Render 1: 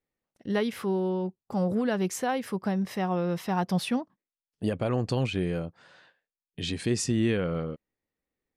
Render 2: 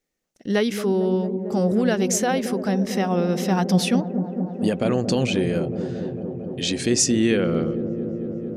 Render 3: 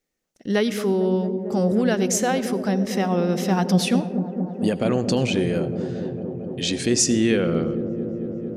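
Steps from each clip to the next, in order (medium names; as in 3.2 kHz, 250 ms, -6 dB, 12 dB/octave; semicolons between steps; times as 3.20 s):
fifteen-band graphic EQ 100 Hz -11 dB, 1 kHz -6 dB, 6.3 kHz +8 dB; feedback echo behind a low-pass 225 ms, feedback 85%, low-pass 530 Hz, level -7.5 dB; trim +7 dB
reverberation RT60 0.80 s, pre-delay 75 ms, DRR 17.5 dB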